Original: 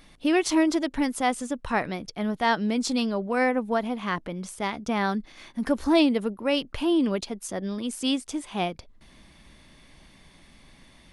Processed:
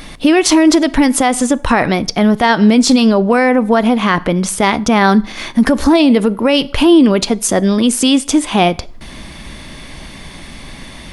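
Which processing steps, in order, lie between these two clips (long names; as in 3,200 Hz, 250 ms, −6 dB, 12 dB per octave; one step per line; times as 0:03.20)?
in parallel at −3 dB: downward compressor, threshold −34 dBFS, peak gain reduction 17 dB
on the sum: dense smooth reverb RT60 0.54 s, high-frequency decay 0.8×, DRR 18.5 dB
boost into a limiter +17.5 dB
level −1 dB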